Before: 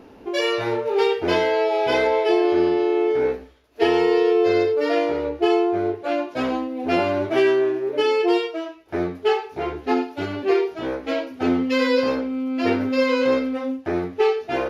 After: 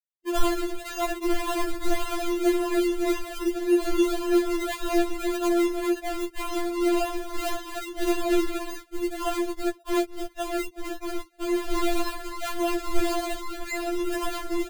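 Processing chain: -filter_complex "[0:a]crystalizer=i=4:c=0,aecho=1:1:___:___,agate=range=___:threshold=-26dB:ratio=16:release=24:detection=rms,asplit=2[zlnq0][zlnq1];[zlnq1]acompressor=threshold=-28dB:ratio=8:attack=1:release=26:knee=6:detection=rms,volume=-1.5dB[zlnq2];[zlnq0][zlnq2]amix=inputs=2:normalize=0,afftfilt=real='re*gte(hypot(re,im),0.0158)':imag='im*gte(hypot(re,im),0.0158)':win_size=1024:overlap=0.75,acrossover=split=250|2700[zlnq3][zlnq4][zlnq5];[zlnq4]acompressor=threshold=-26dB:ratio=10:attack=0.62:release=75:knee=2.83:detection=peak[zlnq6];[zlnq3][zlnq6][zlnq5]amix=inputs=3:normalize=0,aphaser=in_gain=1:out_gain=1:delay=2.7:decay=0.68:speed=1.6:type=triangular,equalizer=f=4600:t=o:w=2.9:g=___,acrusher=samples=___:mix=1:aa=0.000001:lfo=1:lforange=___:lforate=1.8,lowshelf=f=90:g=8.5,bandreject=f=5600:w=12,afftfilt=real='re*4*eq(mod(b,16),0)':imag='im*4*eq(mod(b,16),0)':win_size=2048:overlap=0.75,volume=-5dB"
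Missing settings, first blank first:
1136, 0.473, -23dB, 3, 38, 38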